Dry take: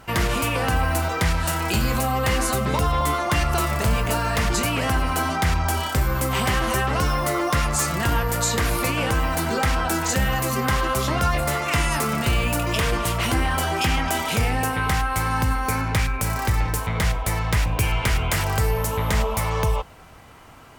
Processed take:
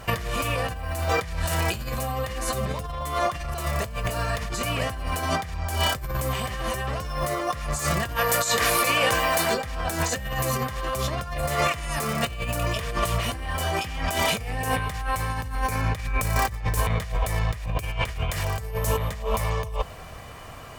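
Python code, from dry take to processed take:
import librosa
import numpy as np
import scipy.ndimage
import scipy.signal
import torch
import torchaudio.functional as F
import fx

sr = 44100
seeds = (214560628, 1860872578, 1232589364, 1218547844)

y = fx.highpass(x, sr, hz=540.0, slope=6, at=(8.15, 9.53), fade=0.02)
y = fx.over_compress(y, sr, threshold_db=-26.0, ratio=-0.5)
y = fx.notch(y, sr, hz=1300.0, q=18.0)
y = y + 0.4 * np.pad(y, (int(1.7 * sr / 1000.0), 0))[:len(y)]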